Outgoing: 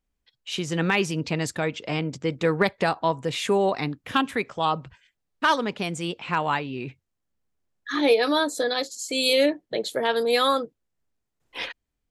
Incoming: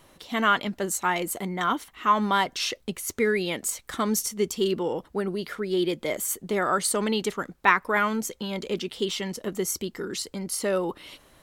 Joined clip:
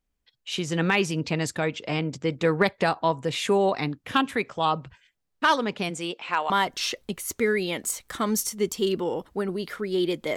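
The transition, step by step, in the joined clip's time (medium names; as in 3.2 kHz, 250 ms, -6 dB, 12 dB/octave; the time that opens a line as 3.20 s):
outgoing
5.89–6.50 s: high-pass 180 Hz -> 620 Hz
6.50 s: go over to incoming from 2.29 s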